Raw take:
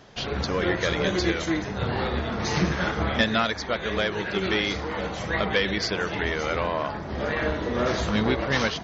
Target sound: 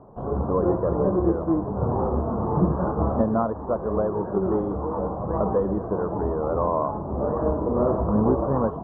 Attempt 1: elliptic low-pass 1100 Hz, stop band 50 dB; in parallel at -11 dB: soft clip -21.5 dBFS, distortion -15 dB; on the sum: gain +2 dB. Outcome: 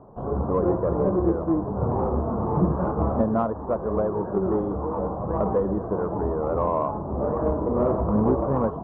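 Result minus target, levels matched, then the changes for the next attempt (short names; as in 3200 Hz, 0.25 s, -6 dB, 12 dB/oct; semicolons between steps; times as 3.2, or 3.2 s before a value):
soft clip: distortion +17 dB
change: soft clip -10.5 dBFS, distortion -32 dB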